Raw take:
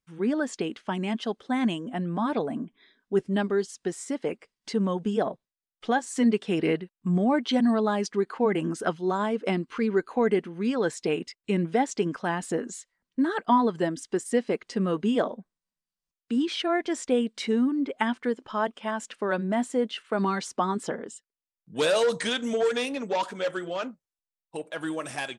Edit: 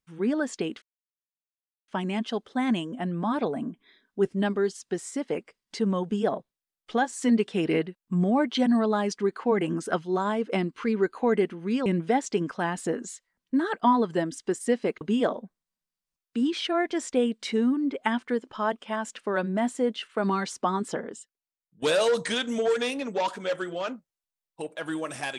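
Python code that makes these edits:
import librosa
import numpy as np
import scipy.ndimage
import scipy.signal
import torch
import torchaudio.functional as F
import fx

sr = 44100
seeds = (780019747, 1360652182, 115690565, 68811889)

y = fx.edit(x, sr, fx.insert_silence(at_s=0.82, length_s=1.06),
    fx.cut(start_s=10.8, length_s=0.71),
    fx.cut(start_s=14.66, length_s=0.3),
    fx.fade_out_to(start_s=21.07, length_s=0.7, floor_db=-15.0), tone=tone)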